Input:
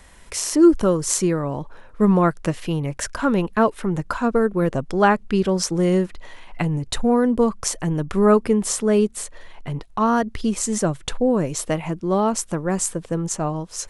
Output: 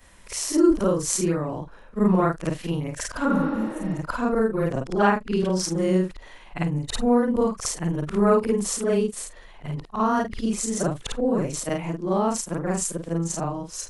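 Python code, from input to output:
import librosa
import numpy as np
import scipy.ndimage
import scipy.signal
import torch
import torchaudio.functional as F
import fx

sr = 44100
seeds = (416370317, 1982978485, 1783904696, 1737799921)

y = fx.frame_reverse(x, sr, frame_ms=108.0)
y = fx.spec_repair(y, sr, seeds[0], start_s=3.33, length_s=0.62, low_hz=220.0, high_hz=5700.0, source='both')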